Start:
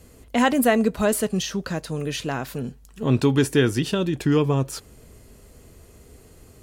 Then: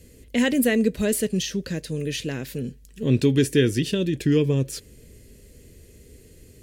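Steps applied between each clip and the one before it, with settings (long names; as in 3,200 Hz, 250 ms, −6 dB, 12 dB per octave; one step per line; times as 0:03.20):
flat-topped bell 970 Hz −15 dB 1.3 octaves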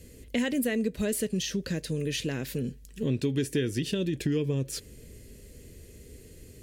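downward compressor 3 to 1, threshold −27 dBFS, peak gain reduction 10.5 dB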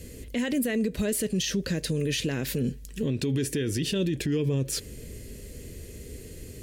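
brickwall limiter −26.5 dBFS, peak gain reduction 11 dB
level +7 dB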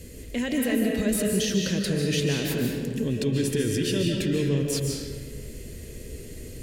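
comb and all-pass reverb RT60 1.6 s, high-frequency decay 0.7×, pre-delay 105 ms, DRR 0 dB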